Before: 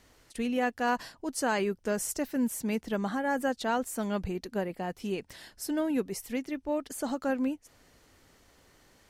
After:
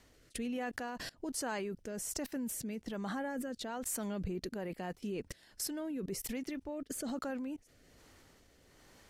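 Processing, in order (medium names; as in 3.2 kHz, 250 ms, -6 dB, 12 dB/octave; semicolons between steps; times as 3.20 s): level held to a coarse grid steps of 24 dB; rotary cabinet horn 1.2 Hz; trim +11.5 dB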